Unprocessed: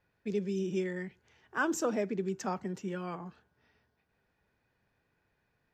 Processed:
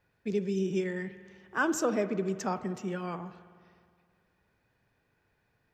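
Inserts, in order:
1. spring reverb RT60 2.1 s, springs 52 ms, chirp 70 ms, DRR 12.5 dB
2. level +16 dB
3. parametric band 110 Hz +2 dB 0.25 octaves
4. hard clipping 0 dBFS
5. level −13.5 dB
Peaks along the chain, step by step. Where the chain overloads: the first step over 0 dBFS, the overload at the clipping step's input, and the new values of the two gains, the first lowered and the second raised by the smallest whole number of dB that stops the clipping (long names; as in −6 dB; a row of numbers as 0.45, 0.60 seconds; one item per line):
−18.0, −2.0, −2.0, −2.0, −15.5 dBFS
no step passes full scale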